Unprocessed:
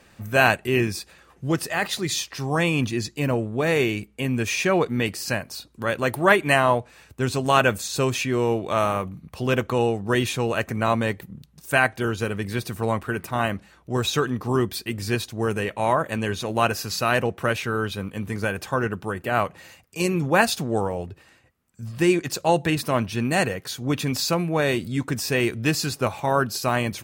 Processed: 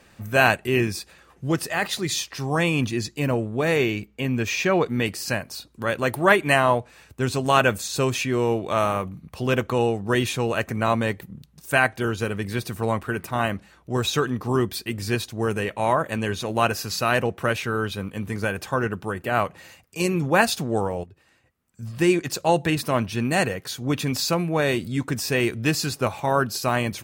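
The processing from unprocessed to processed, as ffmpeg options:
-filter_complex "[0:a]asettb=1/sr,asplit=3[s0][s1][s2];[s0]atrim=end=3.764[s3];[s1]atrim=start=3.76:end=4.85,asetpts=PTS-STARTPTS,afade=t=in:d=0.004:c=qsin,afade=t=out:st=1.086:d=0.004:c=qsin,equalizer=f=9700:w=2.3:g=-13[s4];[s2]atrim=start=4.846[s5];[s3][s4]acrossfade=d=0.004:c1=hsin:c2=qsin[s6];[s6][s5]acrossfade=d=0.004:c1=qsin:c2=hsin,asplit=2[s7][s8];[s7]atrim=end=21.04,asetpts=PTS-STARTPTS,afade=t=out:st=21.036:d=0.004:c=hsin:silence=0.237137[s9];[s8]atrim=start=21.04,asetpts=PTS-STARTPTS,afade=t=in:d=0.79:silence=0.237137[s10];[s9][s10]concat=n=2:v=0:a=1"

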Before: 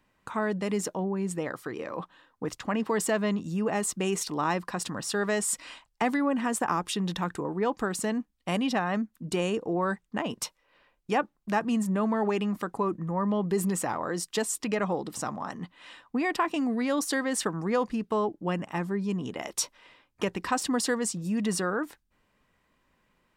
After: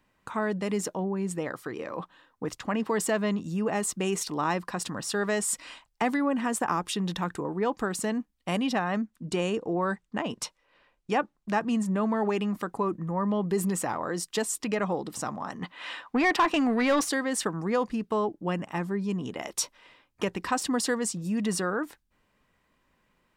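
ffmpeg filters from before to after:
-filter_complex "[0:a]asettb=1/sr,asplit=3[s0][s1][s2];[s0]atrim=end=8.964[s3];[s1]atrim=start=8.96:end=12.11,asetpts=PTS-STARTPTS,afade=t=in:d=0.004:c=qsin,afade=t=out:st=3.146:d=0.004:c=qsin,lowpass=9700[s4];[s2]atrim=start=12.106[s5];[s3][s4]acrossfade=d=0.004:c1=hsin:c2=qsin[s6];[s6][s5]acrossfade=d=0.004:c1=qsin:c2=hsin,asettb=1/sr,asplit=3[s7][s8][s9];[s7]atrim=end=15.624[s10];[s8]atrim=start=15.62:end=17.09,asetpts=PTS-STARTPTS,afade=t=in:d=0.004:c=qsin,afade=t=out:st=1.466:d=0.004:c=qsin,asplit=2[s11][s12];[s12]highpass=f=720:p=1,volume=7.94,asoftclip=type=tanh:threshold=0.2[s13];[s11][s13]amix=inputs=2:normalize=0,lowpass=f=3000:p=1,volume=0.501[s14];[s9]atrim=start=17.086[s15];[s10][s14]acrossfade=d=0.004:c1=hsin:c2=qsin[s16];[s16][s15]acrossfade=d=0.004:c1=qsin:c2=hsin"

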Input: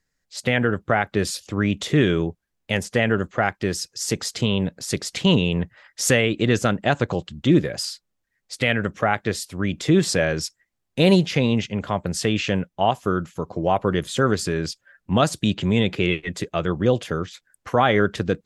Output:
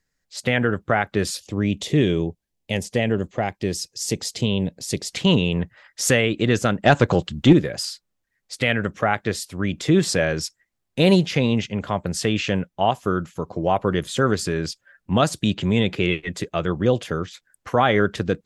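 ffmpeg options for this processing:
-filter_complex "[0:a]asettb=1/sr,asplit=3[s0][s1][s2];[s0]atrim=end=1.414[s3];[s1]atrim=start=1.41:end=5.1,asetpts=PTS-STARTPTS,afade=t=in:d=0.004:c=qsin,afade=t=out:st=3.686:d=0.004:c=qsin,equalizer=f=1400:w=1.8:g=-12.5[s4];[s2]atrim=start=5.096[s5];[s3][s4]acrossfade=d=0.004:c1=hsin:c2=qsin[s6];[s6][s5]acrossfade=d=0.004:c1=qsin:c2=hsin,asettb=1/sr,asplit=3[s7][s8][s9];[s7]atrim=end=6.844[s10];[s8]atrim=start=6.84:end=7.53,asetpts=PTS-STARTPTS,afade=t=in:d=0.004:c=qsin,afade=t=out:st=0.686:d=0.004:c=qsin,acontrast=59[s11];[s9]atrim=start=7.526[s12];[s10][s11]acrossfade=d=0.004:c1=hsin:c2=qsin[s13];[s13][s12]acrossfade=d=0.004:c1=qsin:c2=hsin"

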